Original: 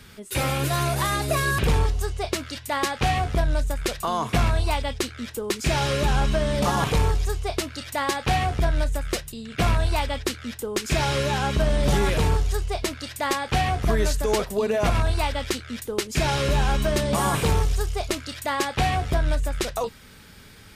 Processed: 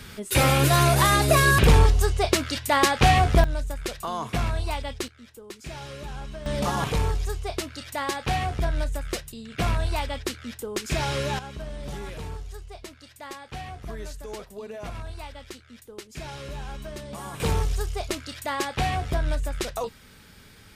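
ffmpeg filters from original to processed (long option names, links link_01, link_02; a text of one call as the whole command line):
ffmpeg -i in.wav -af "asetnsamples=nb_out_samples=441:pad=0,asendcmd='3.44 volume volume -5dB;5.08 volume volume -15dB;6.46 volume volume -3.5dB;11.39 volume volume -14.5dB;17.4 volume volume -3dB',volume=5dB" out.wav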